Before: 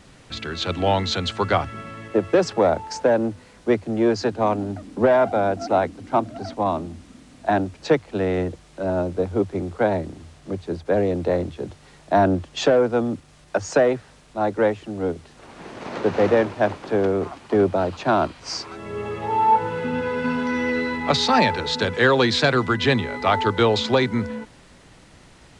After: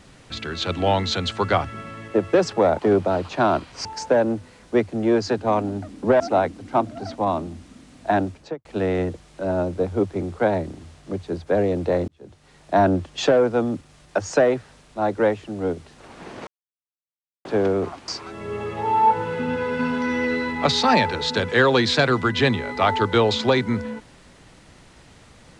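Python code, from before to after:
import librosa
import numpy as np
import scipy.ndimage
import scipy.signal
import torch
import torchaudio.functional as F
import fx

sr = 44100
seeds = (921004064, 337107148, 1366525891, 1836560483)

y = fx.studio_fade_out(x, sr, start_s=7.67, length_s=0.37)
y = fx.edit(y, sr, fx.cut(start_s=5.14, length_s=0.45),
    fx.fade_in_span(start_s=11.47, length_s=0.7),
    fx.silence(start_s=15.86, length_s=0.98),
    fx.move(start_s=17.47, length_s=1.06, to_s=2.79), tone=tone)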